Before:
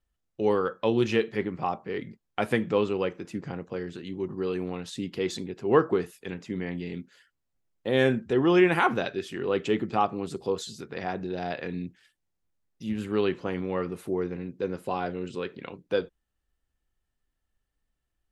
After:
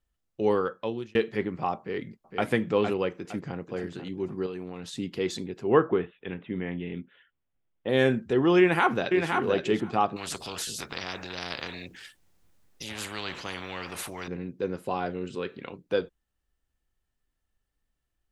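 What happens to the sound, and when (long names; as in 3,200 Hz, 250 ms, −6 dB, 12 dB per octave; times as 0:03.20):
0:00.59–0:01.15: fade out
0:01.78–0:02.47: delay throw 460 ms, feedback 35%, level −5.5 dB
0:03.18–0:03.59: delay throw 490 ms, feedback 30%, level −10 dB
0:04.46–0:04.97: downward compressor, threshold −32 dBFS
0:05.67–0:07.89: Butterworth low-pass 3,600 Hz 96 dB per octave
0:08.59–0:09.28: delay throw 520 ms, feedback 10%, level −4.5 dB
0:10.16–0:14.28: every bin compressed towards the loudest bin 4 to 1
0:15.11–0:15.69: hum removal 169 Hz, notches 25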